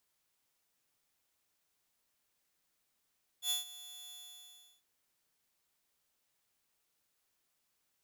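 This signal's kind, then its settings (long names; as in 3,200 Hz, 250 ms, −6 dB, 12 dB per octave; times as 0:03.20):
note with an ADSR envelope saw 3,450 Hz, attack 83 ms, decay 138 ms, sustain −18 dB, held 0.69 s, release 714 ms −27.5 dBFS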